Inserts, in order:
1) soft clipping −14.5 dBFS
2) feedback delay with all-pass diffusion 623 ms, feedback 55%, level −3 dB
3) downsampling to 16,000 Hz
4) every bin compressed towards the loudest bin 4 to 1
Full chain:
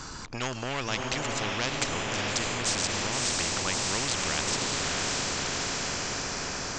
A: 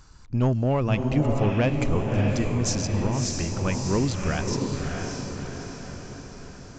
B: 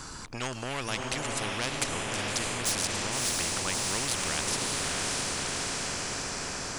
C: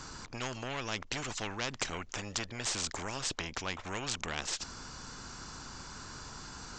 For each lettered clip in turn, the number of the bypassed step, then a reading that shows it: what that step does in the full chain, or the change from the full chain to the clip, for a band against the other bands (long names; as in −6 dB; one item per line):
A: 4, 125 Hz band +16.5 dB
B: 3, 8 kHz band +2.0 dB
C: 2, change in momentary loudness spread +5 LU